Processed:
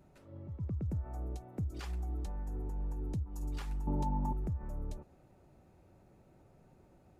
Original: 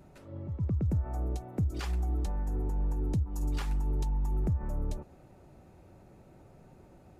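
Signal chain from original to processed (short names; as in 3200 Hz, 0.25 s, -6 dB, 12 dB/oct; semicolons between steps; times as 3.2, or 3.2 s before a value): 3.87–4.33 small resonant body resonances 230/590/840 Hz, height 17 dB, ringing for 25 ms; gain -7 dB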